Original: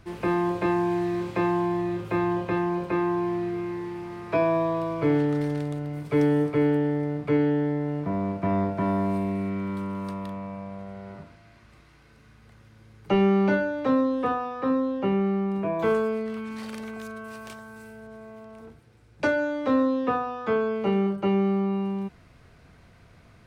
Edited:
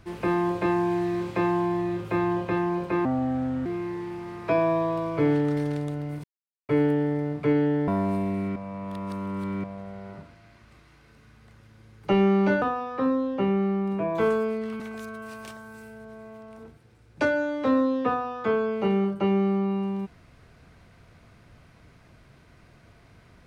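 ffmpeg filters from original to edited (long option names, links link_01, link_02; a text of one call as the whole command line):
ffmpeg -i in.wav -filter_complex "[0:a]asplit=10[link_01][link_02][link_03][link_04][link_05][link_06][link_07][link_08][link_09][link_10];[link_01]atrim=end=3.054[link_11];[link_02]atrim=start=3.05:end=3.5,asetpts=PTS-STARTPTS,asetrate=32634,aresample=44100[link_12];[link_03]atrim=start=3.496:end=6.08,asetpts=PTS-STARTPTS,afade=type=out:start_time=2.58:duration=0.004:curve=hsin[link_13];[link_04]atrim=start=6.08:end=6.53,asetpts=PTS-STARTPTS,volume=0[link_14];[link_05]atrim=start=6.53:end=7.722,asetpts=PTS-STARTPTS,afade=type=in:duration=0.004:curve=hsin[link_15];[link_06]atrim=start=8.888:end=9.572[link_16];[link_07]atrim=start=9.568:end=10.652,asetpts=PTS-STARTPTS,areverse[link_17];[link_08]atrim=start=10.648:end=13.632[link_18];[link_09]atrim=start=14.258:end=16.442[link_19];[link_10]atrim=start=16.818[link_20];[link_11][link_12]acrossfade=duration=0.004:curve1=hsin:curve2=hsin[link_21];[link_13][link_14][link_15]concat=n=3:v=0:a=1[link_22];[link_21][link_22]acrossfade=duration=0.004:curve1=hsin:curve2=hsin[link_23];[link_23][link_16]acrossfade=duration=0.004:curve1=hsin:curve2=hsin[link_24];[link_24][link_17]acrossfade=duration=0.004:curve1=hsin:curve2=hsin[link_25];[link_25][link_18]acrossfade=duration=0.004:curve1=hsin:curve2=hsin[link_26];[link_26][link_19]acrossfade=duration=0.004:curve1=hsin:curve2=hsin[link_27];[link_27][link_20]acrossfade=duration=0.004:curve1=hsin:curve2=hsin" out.wav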